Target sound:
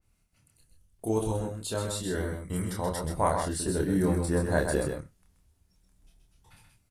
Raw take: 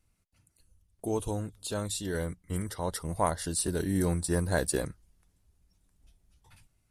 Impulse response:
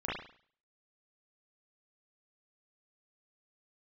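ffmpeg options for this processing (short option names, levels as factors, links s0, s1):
-filter_complex "[0:a]asplit=2[s0][s1];[s1]adelay=27,volume=0.708[s2];[s0][s2]amix=inputs=2:normalize=0,aecho=1:1:129:0.531,asplit=2[s3][s4];[1:a]atrim=start_sample=2205,afade=t=out:st=0.17:d=0.01,atrim=end_sample=7938[s5];[s4][s5]afir=irnorm=-1:irlink=0,volume=0.0501[s6];[s3][s6]amix=inputs=2:normalize=0,adynamicequalizer=threshold=0.00447:dfrequency=2600:dqfactor=0.7:tfrequency=2600:tqfactor=0.7:attack=5:release=100:ratio=0.375:range=4:mode=cutabove:tftype=highshelf"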